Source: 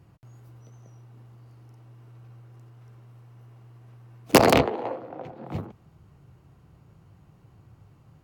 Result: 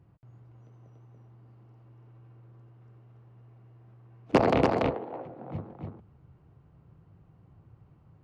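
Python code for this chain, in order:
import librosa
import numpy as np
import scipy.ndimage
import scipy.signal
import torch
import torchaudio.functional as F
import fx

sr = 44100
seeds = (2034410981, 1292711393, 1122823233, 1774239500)

p1 = fx.spacing_loss(x, sr, db_at_10k=27)
p2 = p1 + fx.echo_single(p1, sr, ms=286, db=-3.0, dry=0)
y = p2 * 10.0 ** (-4.0 / 20.0)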